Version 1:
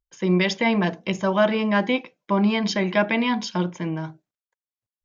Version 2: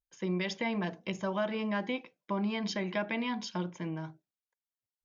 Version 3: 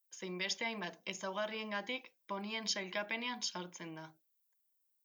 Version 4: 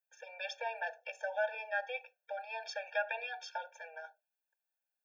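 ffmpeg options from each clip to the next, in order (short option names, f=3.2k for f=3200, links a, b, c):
-af "acompressor=threshold=-22dB:ratio=2,volume=-9dB"
-af "aemphasis=mode=production:type=riaa,volume=-5dB"
-filter_complex "[0:a]acrossover=split=560 2400:gain=0.141 1 0.112[a][b][c];[a][b][c]amix=inputs=3:normalize=0,afftfilt=real='re*eq(mod(floor(b*sr/1024/460),2),1)':imag='im*eq(mod(floor(b*sr/1024/460),2),1)':win_size=1024:overlap=0.75,volume=9dB"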